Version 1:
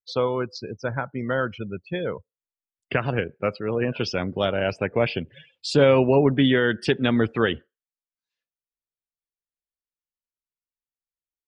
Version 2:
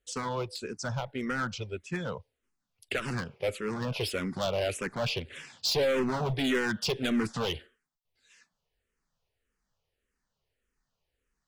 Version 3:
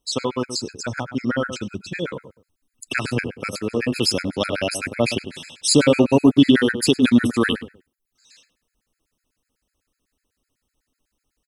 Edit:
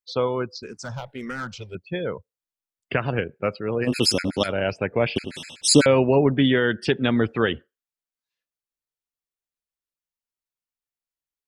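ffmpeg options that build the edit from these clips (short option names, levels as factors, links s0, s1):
-filter_complex "[2:a]asplit=2[s0][s1];[0:a]asplit=4[s2][s3][s4][s5];[s2]atrim=end=0.632[s6];[1:a]atrim=start=0.628:end=1.752[s7];[s3]atrim=start=1.748:end=3.91[s8];[s0]atrim=start=3.81:end=4.53[s9];[s4]atrim=start=4.43:end=5.162[s10];[s1]atrim=start=5.158:end=5.862[s11];[s5]atrim=start=5.858[s12];[s6][s7]acrossfade=d=0.004:c1=hsin:c2=hsin[s13];[s13][s8]acrossfade=d=0.004:c1=hsin:c2=hsin[s14];[s14][s9]acrossfade=d=0.1:c1=tri:c2=tri[s15];[s15][s10]acrossfade=d=0.1:c1=tri:c2=tri[s16];[s16][s11]acrossfade=d=0.004:c1=hsin:c2=hsin[s17];[s17][s12]acrossfade=d=0.004:c1=hsin:c2=hsin"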